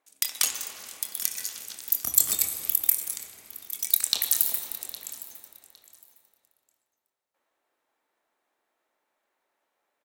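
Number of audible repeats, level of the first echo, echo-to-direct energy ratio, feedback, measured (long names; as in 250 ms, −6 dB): 2, −18.0 dB, −18.0 dB, 22%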